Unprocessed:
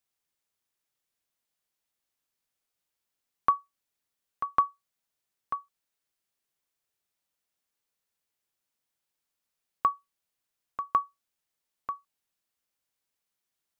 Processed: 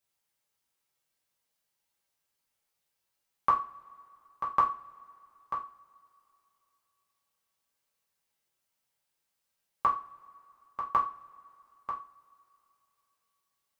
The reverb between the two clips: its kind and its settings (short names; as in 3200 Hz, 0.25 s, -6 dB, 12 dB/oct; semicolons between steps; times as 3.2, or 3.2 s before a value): two-slope reverb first 0.32 s, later 2.9 s, from -28 dB, DRR -4 dB; gain -2.5 dB